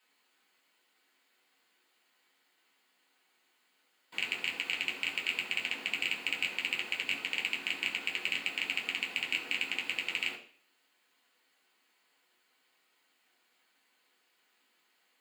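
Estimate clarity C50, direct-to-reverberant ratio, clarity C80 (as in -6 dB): 10.0 dB, -4.5 dB, 13.0 dB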